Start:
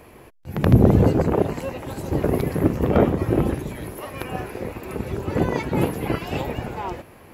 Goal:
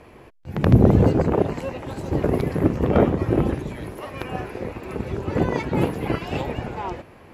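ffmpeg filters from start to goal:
ffmpeg -i in.wav -af "adynamicsmooth=sensitivity=7:basefreq=7500" out.wav

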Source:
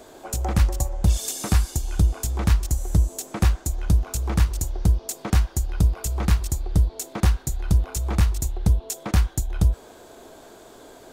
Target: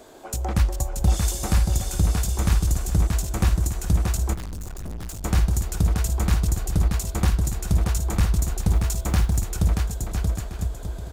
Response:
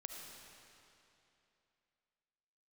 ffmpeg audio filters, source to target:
-filter_complex "[0:a]aecho=1:1:630|1008|1235|1371|1453:0.631|0.398|0.251|0.158|0.1,asplit=3[link_01][link_02][link_03];[link_01]afade=type=out:start_time=4.33:duration=0.02[link_04];[link_02]aeval=exprs='(tanh(31.6*val(0)+0.6)-tanh(0.6))/31.6':channel_layout=same,afade=type=in:start_time=4.33:duration=0.02,afade=type=out:start_time=5.23:duration=0.02[link_05];[link_03]afade=type=in:start_time=5.23:duration=0.02[link_06];[link_04][link_05][link_06]amix=inputs=3:normalize=0,asettb=1/sr,asplit=3[link_07][link_08][link_09];[link_07]atrim=end=8.704[link_10];[link_08]atrim=start=8.7:end=9.4,asetpts=PTS-STARTPTS,afade=type=in:duration=0.004:curve=qsin,afade=type=out:start_time=0.696:duration=0.004:curve=qsin,acrusher=bits=9:mode=log:mix=0:aa=0.000001[link_11];[link_09]atrim=start=9.396[link_12];[link_10][link_11]acrossfade=duration=0.004:curve1=hsin:curve2=qsin[link_13];[link_13][link_12]acrossfade=duration=0.004:curve1=qsin:curve2=hsin,volume=-1.5dB"

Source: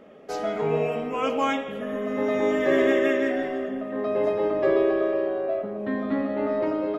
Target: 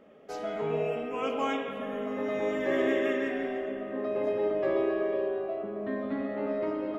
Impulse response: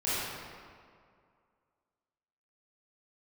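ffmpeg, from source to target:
-filter_complex "[0:a]asplit=2[link_01][link_02];[link_02]highshelf=frequency=4300:width_type=q:width=3:gain=-8.5[link_03];[1:a]atrim=start_sample=2205,asetrate=22932,aresample=44100[link_04];[link_03][link_04]afir=irnorm=-1:irlink=0,volume=-19.5dB[link_05];[link_01][link_05]amix=inputs=2:normalize=0,volume=-8dB"

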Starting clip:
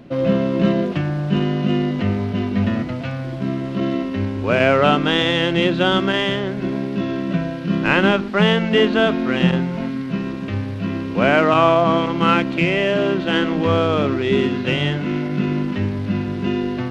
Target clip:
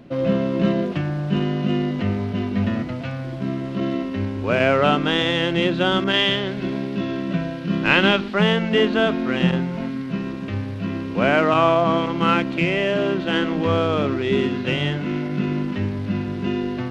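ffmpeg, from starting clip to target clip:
ffmpeg -i in.wav -filter_complex "[0:a]asettb=1/sr,asplit=3[link_01][link_02][link_03];[link_01]atrim=end=6.044[link_04];[link_02]atrim=start=6.04:end=8.34,asetpts=PTS-STARTPTS,afade=type=in:duration=0.004:curve=qsin,afade=type=out:start_time=2.296:duration=0.004:curve=qsin,adynamicequalizer=threshold=0.0158:dfrequency=3400:dqfactor=1:tfrequency=3400:tqfactor=1:attack=5:release=100:ratio=0.375:range=4:mode=boostabove:tftype=bell[link_05];[link_03]atrim=start=8.336[link_06];[link_04][link_05]acrossfade=duration=0.004:curve1=hsin:curve2=qsin[link_07];[link_07][link_06]acrossfade=duration=0.004:curve1=qsin:curve2=hsin,volume=-2.5dB" out.wav

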